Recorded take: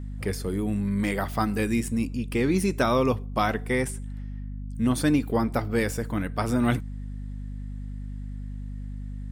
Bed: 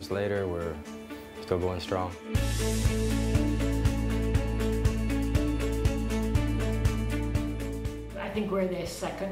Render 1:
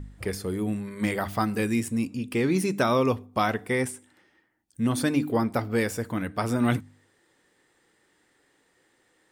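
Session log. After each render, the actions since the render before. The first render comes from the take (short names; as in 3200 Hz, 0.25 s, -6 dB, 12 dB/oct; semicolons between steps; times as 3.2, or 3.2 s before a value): de-hum 50 Hz, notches 6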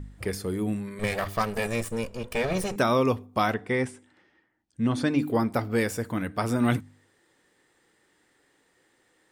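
0.99–2.76 minimum comb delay 1.7 ms; 3.54–5.19 air absorption 84 m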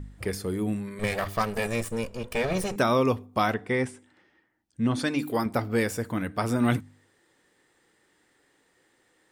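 4.99–5.46 tilt +2 dB/oct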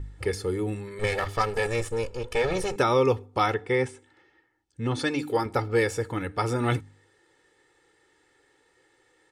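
LPF 8500 Hz 12 dB/oct; comb 2.3 ms, depth 68%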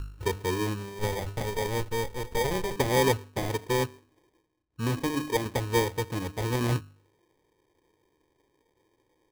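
median filter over 41 samples; sample-and-hold 32×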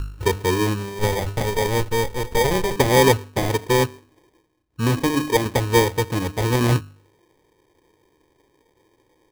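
gain +8.5 dB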